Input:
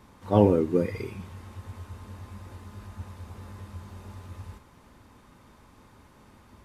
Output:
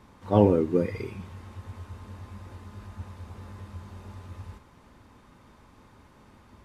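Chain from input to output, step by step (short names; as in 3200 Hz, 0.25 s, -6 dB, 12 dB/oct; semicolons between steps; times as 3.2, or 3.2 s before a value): high shelf 9000 Hz -8 dB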